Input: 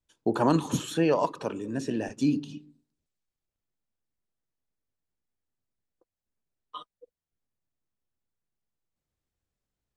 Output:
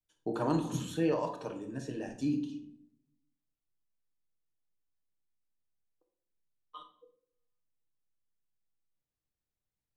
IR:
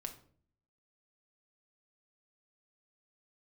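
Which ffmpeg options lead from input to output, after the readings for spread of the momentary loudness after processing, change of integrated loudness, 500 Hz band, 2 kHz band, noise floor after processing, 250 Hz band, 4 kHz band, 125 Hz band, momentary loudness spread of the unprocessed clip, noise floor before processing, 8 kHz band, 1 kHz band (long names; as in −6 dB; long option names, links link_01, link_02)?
21 LU, −6.5 dB, −6.5 dB, −8.0 dB, below −85 dBFS, −6.0 dB, −8.5 dB, −5.5 dB, 21 LU, below −85 dBFS, −8.5 dB, −8.0 dB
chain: -filter_complex "[1:a]atrim=start_sample=2205,asetrate=33075,aresample=44100[link_01];[0:a][link_01]afir=irnorm=-1:irlink=0,volume=-7dB"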